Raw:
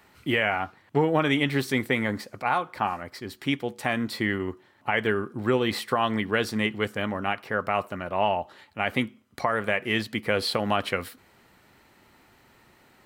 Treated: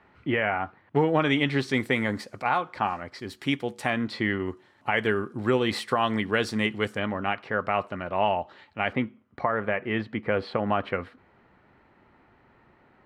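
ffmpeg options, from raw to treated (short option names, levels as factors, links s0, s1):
-af "asetnsamples=n=441:p=0,asendcmd='0.96 lowpass f 5700;1.74 lowpass f 10000;2.46 lowpass f 5900;3.19 lowpass f 11000;3.9 lowpass f 4500;4.46 lowpass f 9700;6.99 lowpass f 4100;8.93 lowpass f 1800',lowpass=2100"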